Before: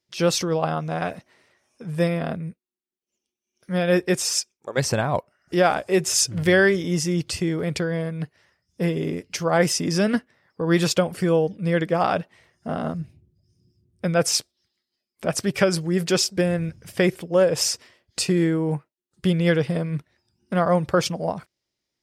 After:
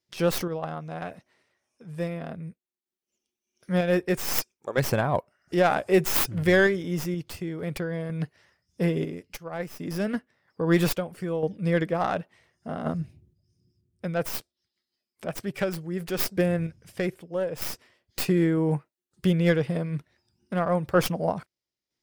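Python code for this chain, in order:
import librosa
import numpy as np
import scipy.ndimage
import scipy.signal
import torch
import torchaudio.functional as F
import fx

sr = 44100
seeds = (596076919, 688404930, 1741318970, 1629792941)

y = fx.tracing_dist(x, sr, depth_ms=0.18)
y = fx.dynamic_eq(y, sr, hz=5300.0, q=0.86, threshold_db=-43.0, ratio=4.0, max_db=-5)
y = fx.tremolo_random(y, sr, seeds[0], hz=2.1, depth_pct=70)
y = fx.upward_expand(y, sr, threshold_db=-39.0, expansion=1.5, at=(9.36, 9.79), fade=0.02)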